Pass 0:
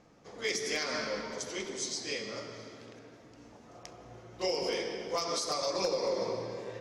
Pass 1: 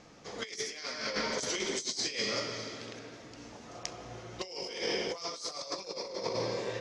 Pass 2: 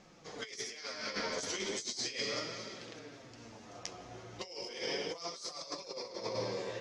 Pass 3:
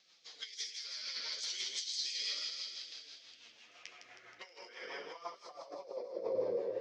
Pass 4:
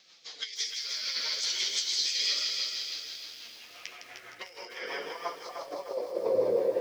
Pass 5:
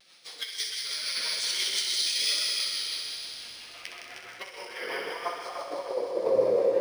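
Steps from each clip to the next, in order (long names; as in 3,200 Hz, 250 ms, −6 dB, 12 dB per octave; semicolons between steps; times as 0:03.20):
low-pass filter 6,900 Hz 12 dB per octave; high-shelf EQ 2,200 Hz +9.5 dB; compressor whose output falls as the input rises −35 dBFS, ratio −0.5
flanger 0.37 Hz, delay 5.1 ms, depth 6.3 ms, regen +35%
delay with a high-pass on its return 159 ms, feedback 62%, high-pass 3,100 Hz, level −5 dB; rotating-speaker cabinet horn 6 Hz; band-pass filter sweep 4,000 Hz → 500 Hz, 0:03.12–0:06.32; level +7 dB
feedback echo at a low word length 304 ms, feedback 55%, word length 10 bits, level −7.5 dB; level +8.5 dB
pitch vibrato 0.96 Hz 42 cents; feedback echo with a high-pass in the loop 63 ms, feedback 83%, high-pass 420 Hz, level −8 dB; linearly interpolated sample-rate reduction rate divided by 3×; level +2.5 dB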